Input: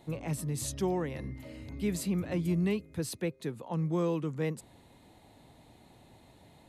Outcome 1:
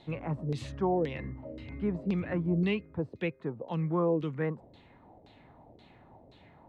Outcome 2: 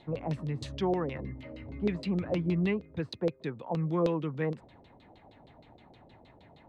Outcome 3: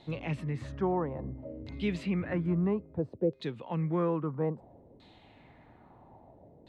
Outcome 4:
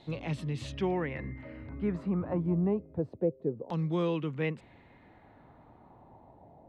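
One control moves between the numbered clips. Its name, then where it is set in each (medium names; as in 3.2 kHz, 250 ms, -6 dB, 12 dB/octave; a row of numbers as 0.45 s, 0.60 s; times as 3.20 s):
LFO low-pass, rate: 1.9 Hz, 6.4 Hz, 0.6 Hz, 0.27 Hz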